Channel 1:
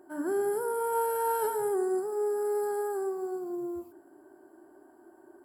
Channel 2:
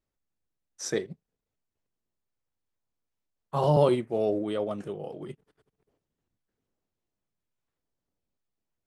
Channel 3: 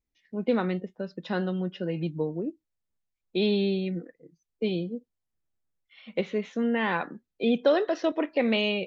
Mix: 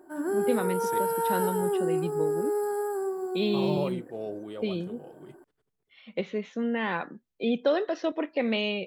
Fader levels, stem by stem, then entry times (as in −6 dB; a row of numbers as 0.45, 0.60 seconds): +1.5, −9.0, −2.5 decibels; 0.00, 0.00, 0.00 seconds